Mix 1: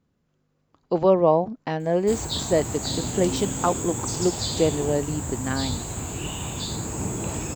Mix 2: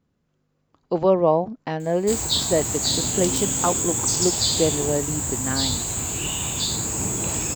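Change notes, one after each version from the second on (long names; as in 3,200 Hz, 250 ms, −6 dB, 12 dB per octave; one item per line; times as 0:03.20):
background: add high-shelf EQ 2,300 Hz +10 dB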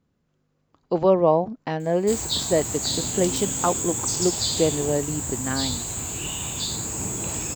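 background −3.5 dB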